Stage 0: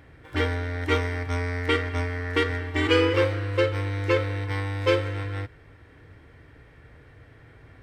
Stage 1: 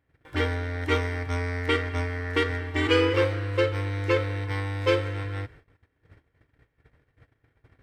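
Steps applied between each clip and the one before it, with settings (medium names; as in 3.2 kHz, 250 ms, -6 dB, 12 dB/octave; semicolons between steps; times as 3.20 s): gate -47 dBFS, range -22 dB; trim -1 dB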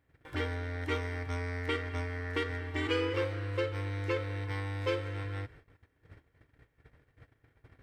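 compression 1.5:1, threshold -45 dBFS, peak gain reduction 10 dB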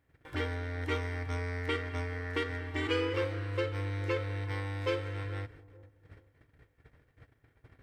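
feedback echo behind a low-pass 433 ms, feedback 30%, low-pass 660 Hz, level -17 dB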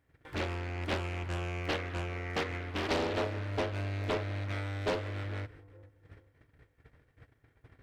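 loudspeaker Doppler distortion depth 0.96 ms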